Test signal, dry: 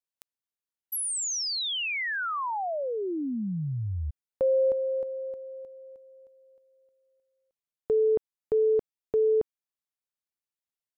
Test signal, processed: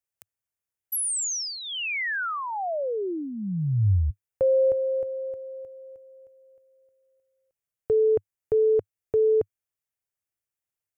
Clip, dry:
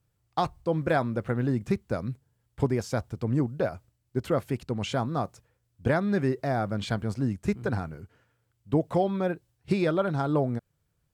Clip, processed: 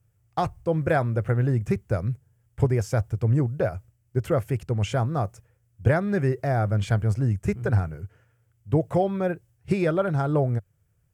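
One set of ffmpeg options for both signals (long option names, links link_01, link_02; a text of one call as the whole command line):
ffmpeg -i in.wav -af "equalizer=frequency=100:width_type=o:width=0.67:gain=8,equalizer=frequency=250:width_type=o:width=0.67:gain=-8,equalizer=frequency=1000:width_type=o:width=0.67:gain=-5,equalizer=frequency=4000:width_type=o:width=0.67:gain=-11,volume=4dB" out.wav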